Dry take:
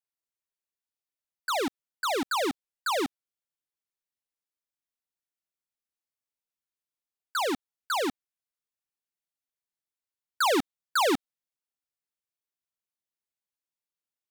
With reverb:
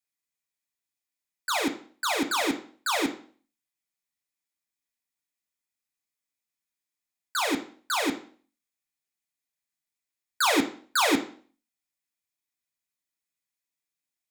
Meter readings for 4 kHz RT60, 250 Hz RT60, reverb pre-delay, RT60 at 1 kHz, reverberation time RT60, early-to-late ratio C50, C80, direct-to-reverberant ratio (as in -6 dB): 0.40 s, 0.50 s, 3 ms, 0.45 s, 0.45 s, 12.0 dB, 17.0 dB, 4.0 dB